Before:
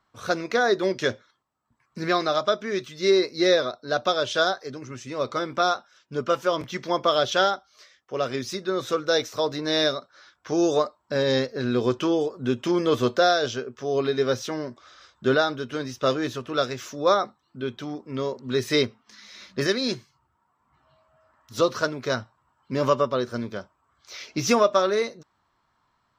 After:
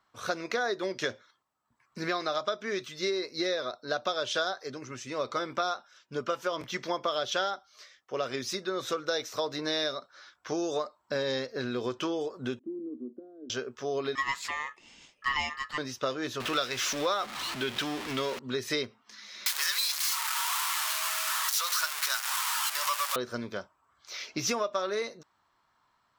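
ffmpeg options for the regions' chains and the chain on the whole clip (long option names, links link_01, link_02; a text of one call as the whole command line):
ffmpeg -i in.wav -filter_complex "[0:a]asettb=1/sr,asplit=3[link_01][link_02][link_03];[link_01]atrim=end=12.594[link_04];[link_02]atrim=start=12.59:end=13.5,asetpts=PTS-STARTPTS,afade=type=in:duration=0.004:curve=qsin,afade=type=out:start_time=0.906:duration=0.004:curve=qsin,acompressor=threshold=-23dB:ratio=5:attack=3.2:release=140:knee=1:detection=peak,asuperpass=centerf=280:order=4:qfactor=3[link_05];[link_03]atrim=start=13.496[link_06];[link_04][link_05]acrossfade=duration=0.004:curve1=hsin:curve2=qsin[link_07];[link_07][link_06]acrossfade=duration=0.004:curve1=qsin:curve2=hsin,asettb=1/sr,asplit=3[link_08][link_09][link_10];[link_08]atrim=end=14.154[link_11];[link_09]atrim=start=14.15:end=15.78,asetpts=PTS-STARTPTS,afade=type=in:duration=0.004:curve=qsin,afade=type=out:start_time=1.626:duration=0.004:curve=qsin,highpass=240,aeval=exprs='val(0)*sin(2*PI*1500*n/s)':channel_layout=same[link_12];[link_10]atrim=start=15.776[link_13];[link_11][link_12]acrossfade=duration=0.004:curve1=hsin:curve2=qsin[link_14];[link_14][link_13]acrossfade=duration=0.004:curve1=qsin:curve2=hsin,asettb=1/sr,asplit=3[link_15][link_16][link_17];[link_15]atrim=end=16.404[link_18];[link_16]atrim=start=16.4:end=18.39,asetpts=PTS-STARTPTS,afade=type=in:duration=0.004:curve=qsin,afade=type=out:start_time=1.986:duration=0.004:curve=qsin,aeval=exprs='val(0)+0.5*0.0211*sgn(val(0))':channel_layout=same,equalizer=frequency=2900:width=0.52:gain=9[link_19];[link_17]atrim=start=18.386[link_20];[link_18][link_19]acrossfade=duration=0.004:curve1=hsin:curve2=qsin[link_21];[link_21][link_20]acrossfade=duration=0.004:curve1=qsin:curve2=hsin,asettb=1/sr,asplit=3[link_22][link_23][link_24];[link_22]atrim=end=19.464[link_25];[link_23]atrim=start=19.46:end=23.16,asetpts=PTS-STARTPTS,afade=type=in:duration=0.004:curve=qsin,afade=type=out:start_time=3.696:duration=0.004:curve=qsin,aeval=exprs='val(0)+0.5*0.0841*sgn(val(0))':channel_layout=same,highpass=frequency=1000:width=0.5412,highpass=frequency=1000:width=1.3066,aemphasis=mode=production:type=cd[link_26];[link_24]atrim=start=23.156[link_27];[link_25][link_26]acrossfade=duration=0.004:curve1=hsin:curve2=qsin[link_28];[link_28][link_27]acrossfade=duration=0.004:curve1=qsin:curve2=hsin,acompressor=threshold=-25dB:ratio=6,lowshelf=frequency=340:gain=-8" out.wav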